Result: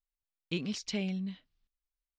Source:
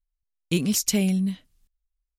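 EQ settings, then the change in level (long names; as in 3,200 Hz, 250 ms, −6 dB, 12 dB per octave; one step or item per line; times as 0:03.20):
low-pass filter 4,700 Hz 24 dB per octave
low-shelf EQ 350 Hz −6.5 dB
−7.0 dB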